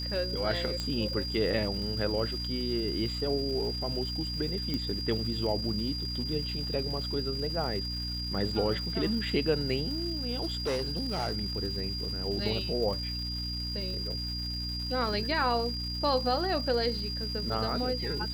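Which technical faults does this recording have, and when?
crackle 580/s -40 dBFS
hum 60 Hz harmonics 5 -37 dBFS
tone 4800 Hz -35 dBFS
0.8 pop -19 dBFS
4.74 pop -19 dBFS
10.41–11.33 clipped -26.5 dBFS

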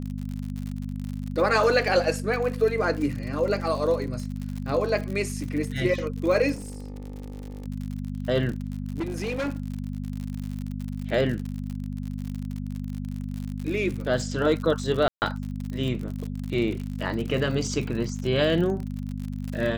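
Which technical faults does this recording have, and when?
crackle 67/s -31 dBFS
hum 50 Hz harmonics 5 -32 dBFS
6.54–7.66 clipped -32.5 dBFS
8.49–9.6 clipped -24.5 dBFS
15.08–15.22 gap 0.139 s

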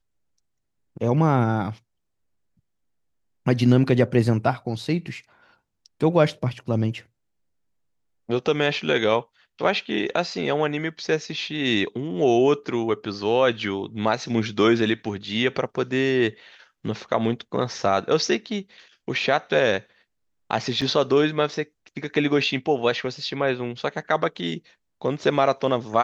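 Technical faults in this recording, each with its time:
20.81–20.82 gap 5.8 ms

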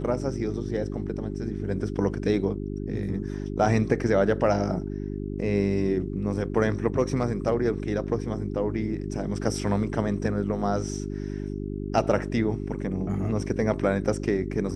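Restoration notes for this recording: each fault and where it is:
hum 50 Hz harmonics 8 -32 dBFS

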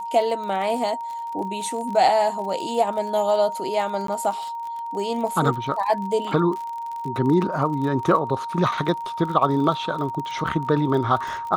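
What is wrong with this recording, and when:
crackle 35/s -30 dBFS
tone 930 Hz -28 dBFS
4.07–4.08 gap 13 ms

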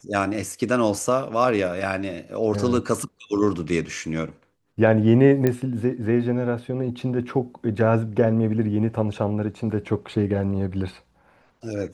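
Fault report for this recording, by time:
5.47 pop -9 dBFS

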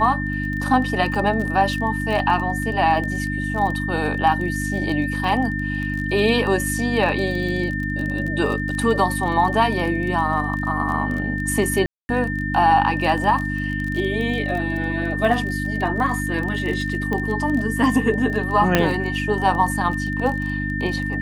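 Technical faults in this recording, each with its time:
crackle 23/s -26 dBFS
hum 50 Hz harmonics 6 -26 dBFS
tone 1800 Hz -27 dBFS
11.86–12.09 gap 0.23 s
17.13 pop -13 dBFS
18.75 pop -1 dBFS

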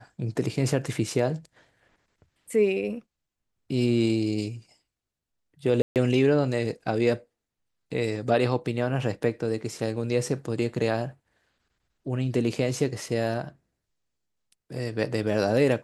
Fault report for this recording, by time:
5.82–5.96 gap 0.138 s

